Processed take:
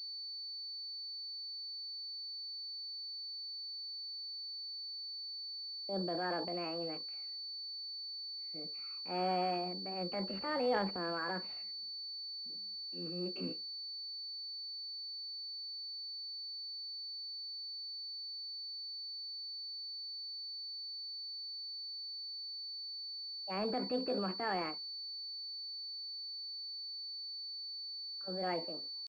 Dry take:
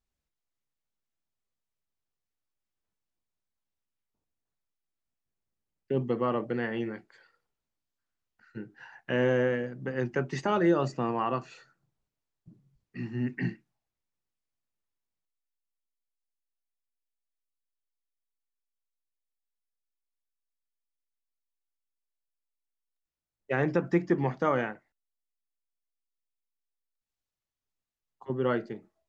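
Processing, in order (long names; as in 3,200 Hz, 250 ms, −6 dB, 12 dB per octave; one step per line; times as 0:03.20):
pitch shifter +6.5 semitones
transient designer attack −5 dB, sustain +7 dB
switching amplifier with a slow clock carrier 4,500 Hz
level −8.5 dB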